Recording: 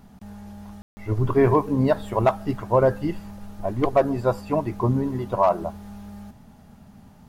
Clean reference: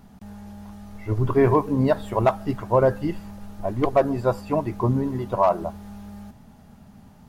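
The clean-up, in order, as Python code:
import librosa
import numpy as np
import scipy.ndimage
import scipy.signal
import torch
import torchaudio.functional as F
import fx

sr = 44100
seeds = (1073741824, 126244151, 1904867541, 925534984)

y = fx.fix_ambience(x, sr, seeds[0], print_start_s=6.32, print_end_s=6.82, start_s=0.82, end_s=0.97)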